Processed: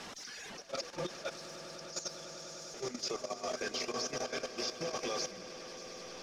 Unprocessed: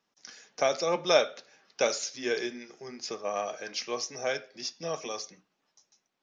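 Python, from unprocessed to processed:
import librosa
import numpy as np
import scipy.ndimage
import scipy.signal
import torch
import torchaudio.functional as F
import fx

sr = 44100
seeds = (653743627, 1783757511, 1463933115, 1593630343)

y = x + 0.5 * 10.0 ** (-36.5 / 20.0) * np.sign(x)
y = fx.rev_schroeder(y, sr, rt60_s=3.2, comb_ms=28, drr_db=14.0)
y = fx.over_compress(y, sr, threshold_db=-32.0, ratio=-0.5)
y = fx.cheby2_highpass(y, sr, hz=1700.0, order=4, stop_db=50, at=(1.3, 2.74))
y = fx.dereverb_blind(y, sr, rt60_s=1.7)
y = scipy.signal.sosfilt(scipy.signal.butter(2, 6900.0, 'lowpass', fs=sr, output='sos'), y)
y = fx.echo_swell(y, sr, ms=100, loudest=8, wet_db=-11.5)
y = fx.level_steps(y, sr, step_db=11)
y = y * librosa.db_to_amplitude(-3.0)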